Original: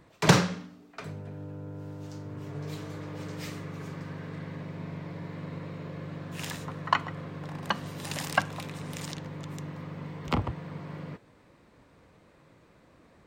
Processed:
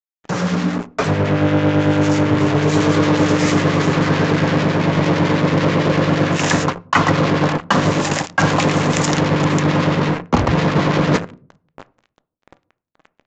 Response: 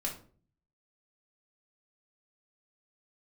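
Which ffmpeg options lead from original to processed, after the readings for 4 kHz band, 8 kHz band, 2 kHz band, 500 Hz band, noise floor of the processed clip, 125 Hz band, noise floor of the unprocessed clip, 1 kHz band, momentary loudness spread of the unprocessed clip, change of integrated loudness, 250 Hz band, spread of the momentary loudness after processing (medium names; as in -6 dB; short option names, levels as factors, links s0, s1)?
+13.0 dB, +13.0 dB, +15.5 dB, +20.0 dB, -79 dBFS, +17.0 dB, -60 dBFS, +15.0 dB, 12 LU, +17.5 dB, +20.0 dB, 4 LU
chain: -filter_complex "[0:a]areverse,acompressor=threshold=0.00501:ratio=16,areverse,equalizer=f=5200:t=o:w=1.8:g=-12.5,aexciter=amount=1.3:drive=9:freq=5300,agate=range=0.0224:threshold=0.00282:ratio=3:detection=peak,acrusher=bits=8:mix=0:aa=0.5,lowshelf=f=140:g=-8,dynaudnorm=f=350:g=5:m=2.82,aresample=16000,aresample=44100,asplit=2[s0][s1];[1:a]atrim=start_sample=2205,highshelf=f=4300:g=-11[s2];[s1][s2]afir=irnorm=-1:irlink=0,volume=0.2[s3];[s0][s3]amix=inputs=2:normalize=0,acrossover=split=1400[s4][s5];[s4]aeval=exprs='val(0)*(1-0.5/2+0.5/2*cos(2*PI*9*n/s))':c=same[s6];[s5]aeval=exprs='val(0)*(1-0.5/2-0.5/2*cos(2*PI*9*n/s))':c=same[s7];[s6][s7]amix=inputs=2:normalize=0,alimiter=level_in=33.5:limit=0.891:release=50:level=0:latency=1,volume=0.891"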